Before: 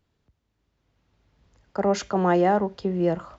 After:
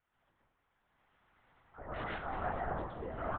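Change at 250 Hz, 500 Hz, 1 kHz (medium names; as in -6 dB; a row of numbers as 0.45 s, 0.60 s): -22.5 dB, -18.5 dB, -13.0 dB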